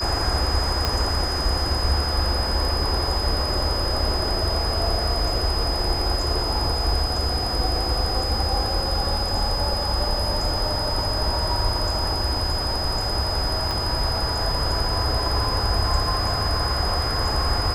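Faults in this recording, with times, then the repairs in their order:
whine 5 kHz -26 dBFS
0.85 s: pop -7 dBFS
13.71 s: pop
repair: de-click; band-stop 5 kHz, Q 30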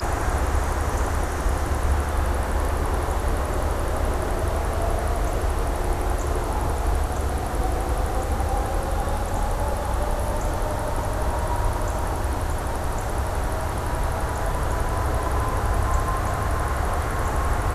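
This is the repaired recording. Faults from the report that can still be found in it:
0.85 s: pop
13.71 s: pop

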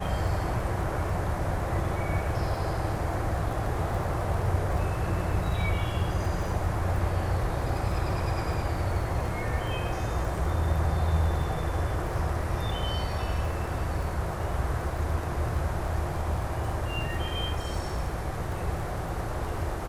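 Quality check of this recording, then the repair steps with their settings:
crackle 33 per s -35 dBFS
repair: de-click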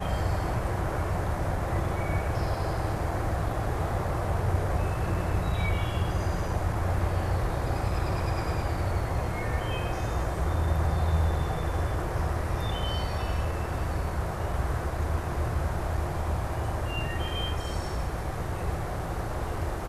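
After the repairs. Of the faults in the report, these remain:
nothing left

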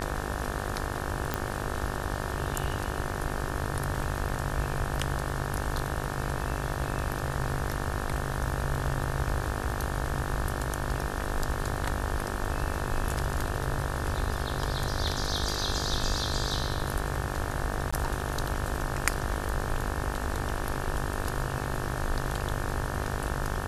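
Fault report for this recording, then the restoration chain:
buzz 50 Hz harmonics 36 -35 dBFS
1.34 s: pop -12 dBFS
17.91–17.93 s: dropout 15 ms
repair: de-click; de-hum 50 Hz, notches 36; interpolate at 17.91 s, 15 ms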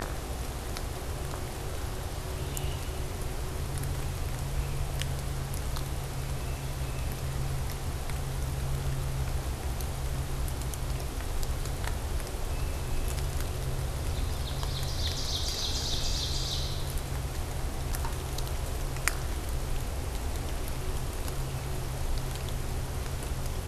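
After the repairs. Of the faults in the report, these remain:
nothing left

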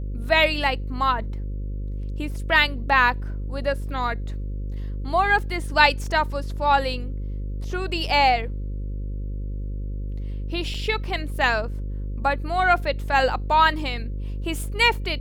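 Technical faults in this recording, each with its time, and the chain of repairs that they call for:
buzz 50 Hz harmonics 11 -29 dBFS
10.74 s: dropout 4.6 ms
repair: de-hum 50 Hz, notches 11; interpolate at 10.74 s, 4.6 ms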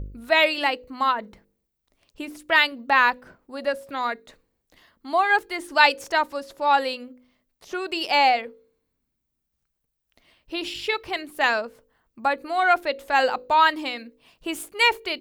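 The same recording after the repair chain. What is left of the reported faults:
nothing left

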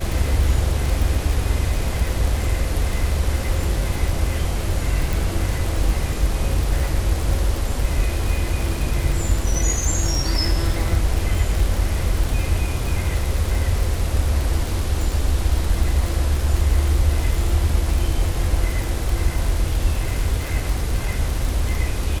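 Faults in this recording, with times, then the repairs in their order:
crackle 56 per s -22 dBFS
5.13 s: pop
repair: de-click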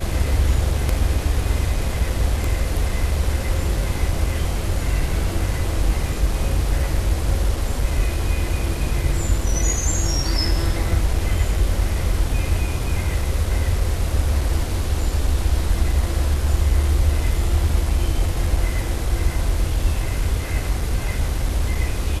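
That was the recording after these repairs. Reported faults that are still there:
nothing left

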